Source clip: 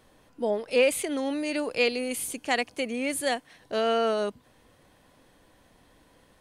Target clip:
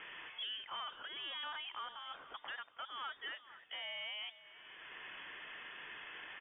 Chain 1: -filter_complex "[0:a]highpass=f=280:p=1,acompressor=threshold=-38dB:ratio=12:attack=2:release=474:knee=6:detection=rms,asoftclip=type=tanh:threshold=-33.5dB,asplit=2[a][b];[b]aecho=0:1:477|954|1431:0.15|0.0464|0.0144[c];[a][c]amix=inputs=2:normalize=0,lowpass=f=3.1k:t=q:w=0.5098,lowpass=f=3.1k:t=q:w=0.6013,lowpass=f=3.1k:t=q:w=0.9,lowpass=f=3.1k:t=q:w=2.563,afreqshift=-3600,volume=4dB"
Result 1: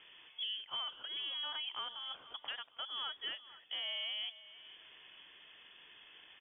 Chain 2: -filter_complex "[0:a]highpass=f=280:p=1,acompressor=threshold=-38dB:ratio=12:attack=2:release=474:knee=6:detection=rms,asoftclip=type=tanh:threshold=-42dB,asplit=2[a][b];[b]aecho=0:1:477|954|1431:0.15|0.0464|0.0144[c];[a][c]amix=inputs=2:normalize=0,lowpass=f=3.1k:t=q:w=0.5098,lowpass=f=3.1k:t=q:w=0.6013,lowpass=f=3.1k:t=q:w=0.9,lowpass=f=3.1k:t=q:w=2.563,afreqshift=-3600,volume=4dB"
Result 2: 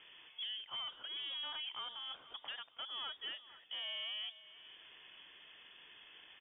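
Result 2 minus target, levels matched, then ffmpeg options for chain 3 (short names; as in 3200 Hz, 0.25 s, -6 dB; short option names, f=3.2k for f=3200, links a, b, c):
2000 Hz band -8.5 dB
-filter_complex "[0:a]highpass=f=280:p=1,equalizer=f=2k:w=0.58:g=15,acompressor=threshold=-38dB:ratio=12:attack=2:release=474:knee=6:detection=rms,asoftclip=type=tanh:threshold=-42dB,asplit=2[a][b];[b]aecho=0:1:477|954|1431:0.15|0.0464|0.0144[c];[a][c]amix=inputs=2:normalize=0,lowpass=f=3.1k:t=q:w=0.5098,lowpass=f=3.1k:t=q:w=0.6013,lowpass=f=3.1k:t=q:w=0.9,lowpass=f=3.1k:t=q:w=2.563,afreqshift=-3600,volume=4dB"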